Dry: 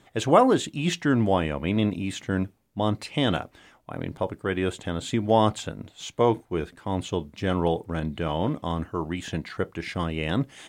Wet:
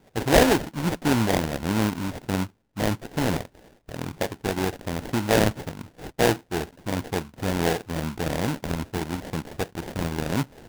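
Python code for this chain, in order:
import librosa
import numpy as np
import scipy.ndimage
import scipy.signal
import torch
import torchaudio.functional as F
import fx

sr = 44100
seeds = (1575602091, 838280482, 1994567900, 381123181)

y = fx.sample_hold(x, sr, seeds[0], rate_hz=1200.0, jitter_pct=20)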